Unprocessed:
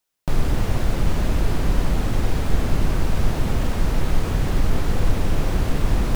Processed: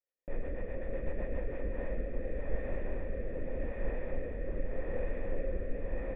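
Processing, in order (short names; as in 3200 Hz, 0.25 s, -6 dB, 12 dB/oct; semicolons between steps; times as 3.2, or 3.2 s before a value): graphic EQ 125/250/1000 Hz -10/+4/+5 dB; echo 0.611 s -5 dB; rotary speaker horn 8 Hz, later 0.85 Hz, at 1.1; vocal tract filter e; low shelf 160 Hz +7 dB; gain -1.5 dB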